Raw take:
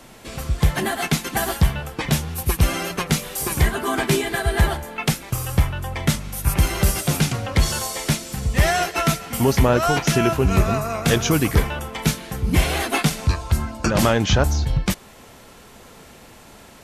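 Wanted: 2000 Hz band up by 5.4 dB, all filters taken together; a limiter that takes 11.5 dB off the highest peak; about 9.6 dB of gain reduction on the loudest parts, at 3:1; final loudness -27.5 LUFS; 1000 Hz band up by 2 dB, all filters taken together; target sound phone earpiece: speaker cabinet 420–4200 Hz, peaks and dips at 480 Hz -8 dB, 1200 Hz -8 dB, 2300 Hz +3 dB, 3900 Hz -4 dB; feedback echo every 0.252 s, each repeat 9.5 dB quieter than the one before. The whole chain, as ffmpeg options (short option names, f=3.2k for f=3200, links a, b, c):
-af "equalizer=f=1k:t=o:g=5.5,equalizer=f=2k:t=o:g=5,acompressor=threshold=-24dB:ratio=3,alimiter=limit=-19.5dB:level=0:latency=1,highpass=420,equalizer=f=480:t=q:w=4:g=-8,equalizer=f=1.2k:t=q:w=4:g=-8,equalizer=f=2.3k:t=q:w=4:g=3,equalizer=f=3.9k:t=q:w=4:g=-4,lowpass=f=4.2k:w=0.5412,lowpass=f=4.2k:w=1.3066,aecho=1:1:252|504|756|1008:0.335|0.111|0.0365|0.012,volume=5dB"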